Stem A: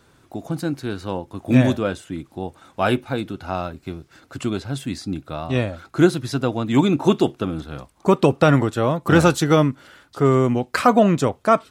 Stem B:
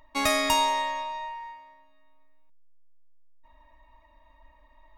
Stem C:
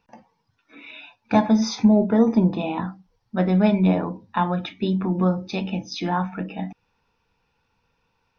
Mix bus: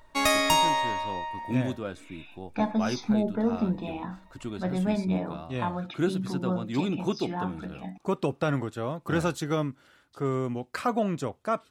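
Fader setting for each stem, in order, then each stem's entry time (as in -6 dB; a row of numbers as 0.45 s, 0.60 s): -12.0 dB, +1.0 dB, -9.0 dB; 0.00 s, 0.00 s, 1.25 s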